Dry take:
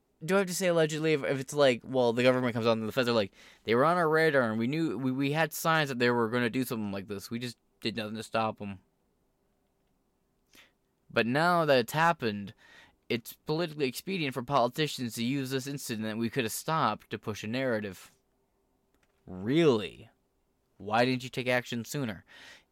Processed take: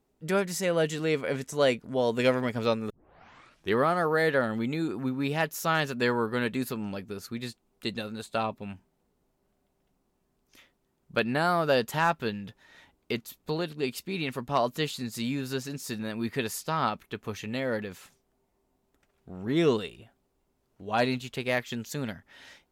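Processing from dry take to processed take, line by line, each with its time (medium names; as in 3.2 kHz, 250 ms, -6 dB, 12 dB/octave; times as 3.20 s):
2.90 s: tape start 0.88 s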